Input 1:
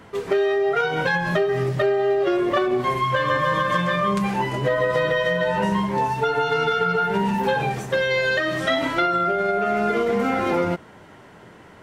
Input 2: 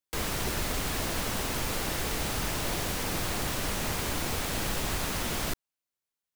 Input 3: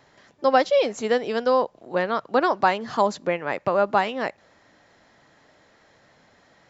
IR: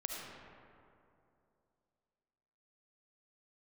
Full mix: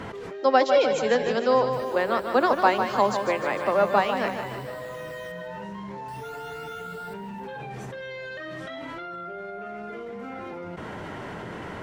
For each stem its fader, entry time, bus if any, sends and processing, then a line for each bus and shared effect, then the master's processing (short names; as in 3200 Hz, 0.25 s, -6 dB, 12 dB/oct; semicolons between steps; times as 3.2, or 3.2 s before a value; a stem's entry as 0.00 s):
-16.5 dB, 0.00 s, no send, no echo send, high shelf 5700 Hz -8.5 dB; limiter -15 dBFS, peak gain reduction 5.5 dB; fast leveller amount 100%
-17.5 dB, 1.60 s, muted 5.32–6.08, no send, echo send -13 dB, HPF 81 Hz; phaser stages 12, 0.41 Hz, lowest notch 320–2200 Hz
-1.0 dB, 0.00 s, no send, echo send -7.5 dB, steep high-pass 190 Hz 96 dB/oct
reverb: off
echo: feedback echo 0.151 s, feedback 59%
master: dry